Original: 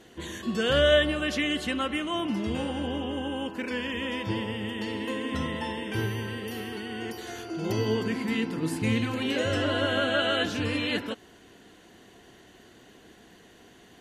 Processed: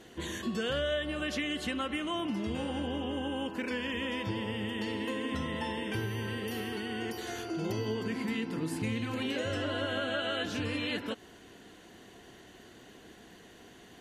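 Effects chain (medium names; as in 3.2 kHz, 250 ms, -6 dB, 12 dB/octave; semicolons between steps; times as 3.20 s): compression 4:1, threshold -31 dBFS, peak gain reduction 12.5 dB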